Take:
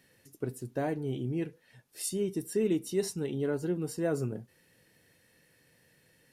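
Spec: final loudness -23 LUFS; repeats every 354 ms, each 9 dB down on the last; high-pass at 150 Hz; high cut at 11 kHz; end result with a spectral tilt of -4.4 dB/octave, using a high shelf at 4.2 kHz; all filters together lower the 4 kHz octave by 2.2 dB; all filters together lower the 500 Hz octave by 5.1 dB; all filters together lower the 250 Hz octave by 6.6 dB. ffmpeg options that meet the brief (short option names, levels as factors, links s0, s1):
-af "highpass=150,lowpass=11000,equalizer=f=250:t=o:g=-7.5,equalizer=f=500:t=o:g=-3.5,equalizer=f=4000:t=o:g=-7.5,highshelf=f=4200:g=5.5,aecho=1:1:354|708|1062|1416:0.355|0.124|0.0435|0.0152,volume=5.31"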